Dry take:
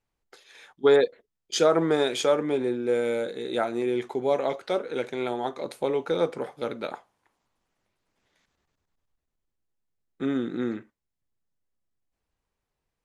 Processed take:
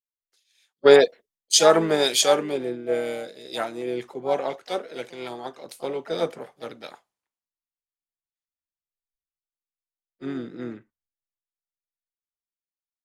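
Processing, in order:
high-shelf EQ 2,800 Hz +8 dB
pitch-shifted copies added +5 semitones −9 dB
multiband upward and downward expander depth 100%
level −3 dB

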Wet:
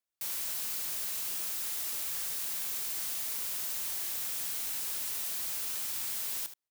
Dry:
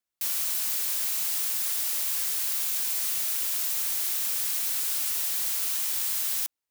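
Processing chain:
hard clipping −29 dBFS, distortion −9 dB
on a send: single-tap delay 76 ms −12 dB
on the sum: level −4 dB

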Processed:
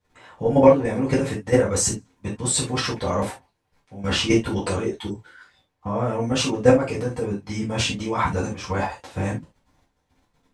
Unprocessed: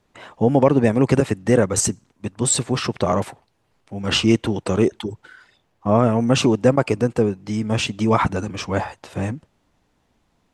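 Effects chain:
output level in coarse steps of 13 dB
reverb whose tail is shaped and stops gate 100 ms falling, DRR −8 dB
level −4 dB

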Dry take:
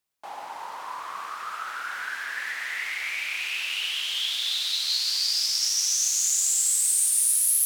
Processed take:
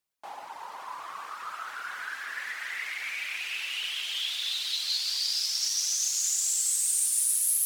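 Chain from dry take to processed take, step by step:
reverb reduction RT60 0.79 s
on a send: feedback delay with all-pass diffusion 506 ms, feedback 44%, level −9 dB
on the sum: level −2.5 dB

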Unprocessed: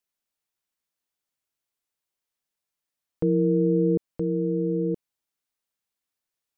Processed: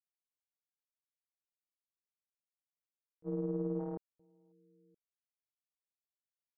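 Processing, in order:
0:03.79–0:04.52: phase distortion by the signal itself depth 0.33 ms
noise gate −18 dBFS, range −43 dB

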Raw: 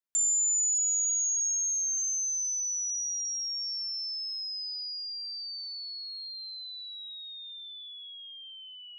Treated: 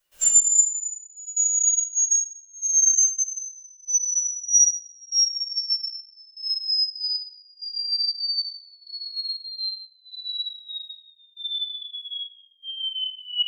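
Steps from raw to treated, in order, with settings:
upward compression, threshold −41 dBFS
time stretch by phase vocoder 1.5×
hollow resonant body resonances 2,900 Hz, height 18 dB, ringing for 100 ms
gate pattern ".xxxx.xx..." 132 BPM −24 dB
rectangular room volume 160 cubic metres, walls mixed, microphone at 5.8 metres

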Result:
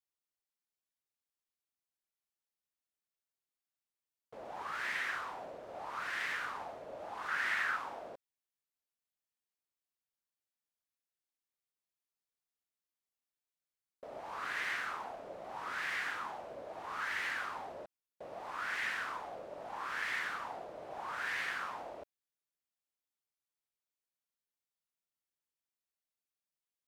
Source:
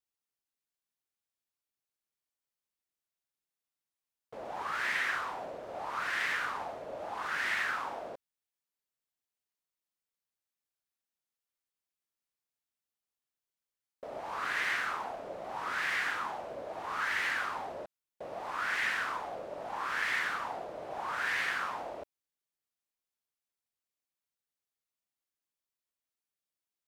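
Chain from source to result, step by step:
0:07.28–0:07.77: parametric band 1,400 Hz +5 dB 1.1 octaves
level −5 dB

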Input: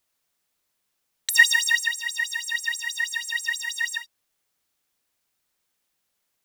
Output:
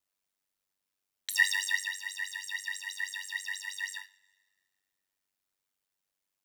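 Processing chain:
coupled-rooms reverb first 0.3 s, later 1.8 s, from −22 dB, DRR 7.5 dB
ring modulation 48 Hz
level −7.5 dB

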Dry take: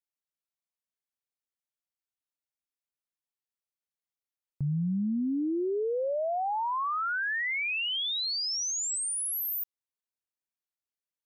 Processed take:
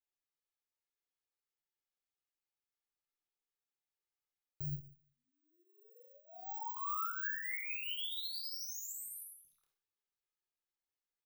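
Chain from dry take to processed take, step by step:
0:04.69–0:06.77: high-pass filter 1,300 Hz 24 dB per octave
comb filter 2.4 ms, depth 77%
downward compressor 8 to 1, threshold −36 dBFS, peak gain reduction 11.5 dB
flanger 0.34 Hz, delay 6.6 ms, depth 1.5 ms, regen −71%
hard clipping −37 dBFS, distortion −27 dB
high-frequency loss of the air 59 metres
bad sample-rate conversion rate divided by 2×, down filtered, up zero stuff
convolution reverb RT60 0.50 s, pre-delay 43 ms, DRR 2.5 dB
micro pitch shift up and down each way 34 cents
level +2.5 dB

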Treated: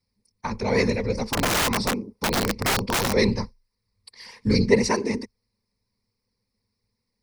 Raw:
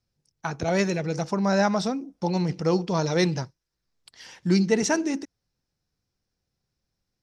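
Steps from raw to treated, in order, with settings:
random phases in short frames
EQ curve with evenly spaced ripples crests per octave 0.91, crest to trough 13 dB
0:01.32–0:03.13: wrap-around overflow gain 17 dB

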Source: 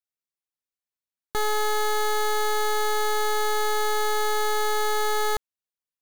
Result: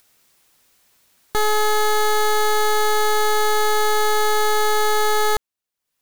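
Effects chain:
upward compression, threshold −44 dBFS
level +6 dB

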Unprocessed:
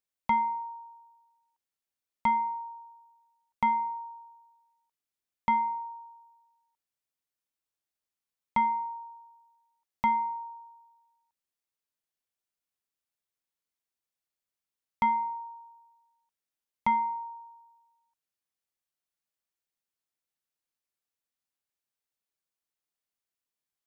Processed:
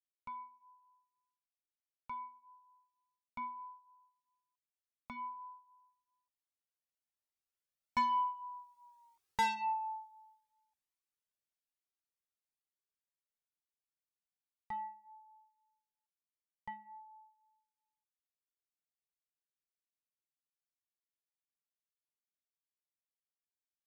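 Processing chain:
source passing by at 0:09.13, 24 m/s, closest 9.8 metres
soft clipping −35 dBFS, distortion −5 dB
flanger whose copies keep moving one way rising 1.1 Hz
level +11 dB

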